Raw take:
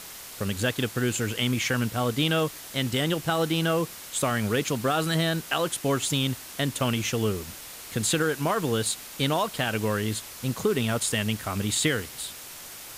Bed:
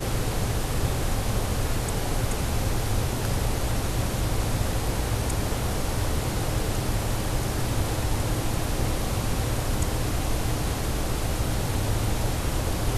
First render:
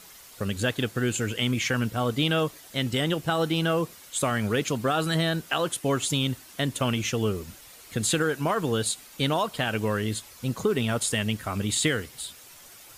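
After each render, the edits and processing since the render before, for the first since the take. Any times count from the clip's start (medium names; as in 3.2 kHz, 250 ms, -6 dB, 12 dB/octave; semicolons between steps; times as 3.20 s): noise reduction 9 dB, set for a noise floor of -42 dBFS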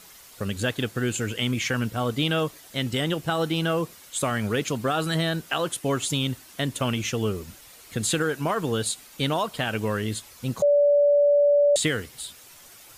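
10.62–11.76 s: bleep 578 Hz -15 dBFS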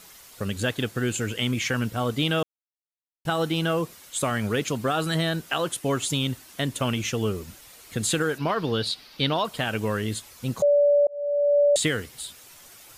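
2.43–3.25 s: mute; 8.38–9.45 s: resonant high shelf 5.9 kHz -8.5 dB, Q 3; 11.07–11.59 s: fade in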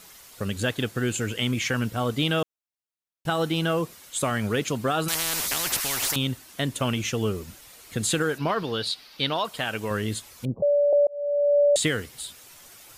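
5.08–6.16 s: spectrum-flattening compressor 10:1; 8.63–9.91 s: bass shelf 380 Hz -7 dB; 10.45–10.93 s: inverse Chebyshev low-pass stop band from 2.1 kHz, stop band 60 dB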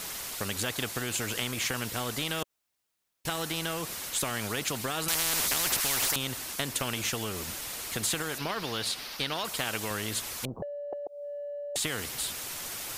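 compression, threshold -25 dBFS, peak gain reduction 7.5 dB; spectrum-flattening compressor 2:1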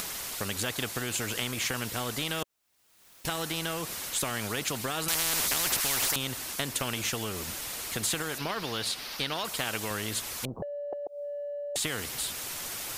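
upward compressor, threshold -33 dBFS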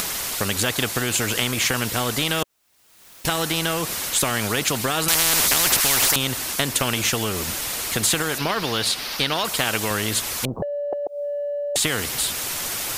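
trim +9.5 dB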